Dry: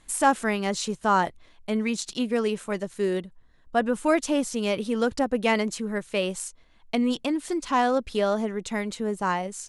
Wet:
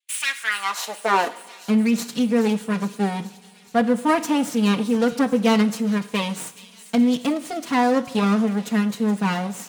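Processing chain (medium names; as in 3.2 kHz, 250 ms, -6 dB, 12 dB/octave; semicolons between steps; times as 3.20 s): comb filter that takes the minimum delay 4.2 ms; gate -52 dBFS, range -26 dB; high-pass sweep 2.8 kHz -> 160 Hz, 0.19–1.68 s; on a send: feedback echo behind a high-pass 422 ms, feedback 70%, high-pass 3.7 kHz, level -12 dB; on the sum: two-slope reverb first 0.62 s, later 3.4 s, from -18 dB, DRR 11.5 dB; trim +2.5 dB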